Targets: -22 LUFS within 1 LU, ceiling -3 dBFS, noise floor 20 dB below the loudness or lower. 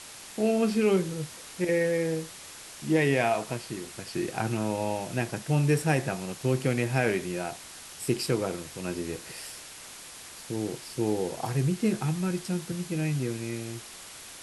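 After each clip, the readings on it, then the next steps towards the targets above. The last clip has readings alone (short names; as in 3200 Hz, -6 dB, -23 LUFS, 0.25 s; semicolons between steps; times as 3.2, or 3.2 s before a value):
noise floor -45 dBFS; noise floor target -49 dBFS; loudness -29.0 LUFS; peak -11.5 dBFS; loudness target -22.0 LUFS
-> denoiser 6 dB, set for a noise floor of -45 dBFS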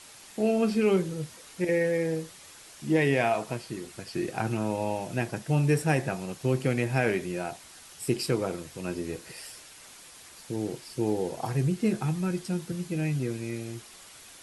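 noise floor -50 dBFS; loudness -29.0 LUFS; peak -11.5 dBFS; loudness target -22.0 LUFS
-> gain +7 dB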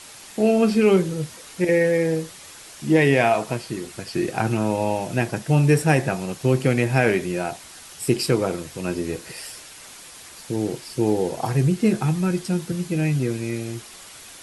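loudness -22.0 LUFS; peak -4.5 dBFS; noise floor -43 dBFS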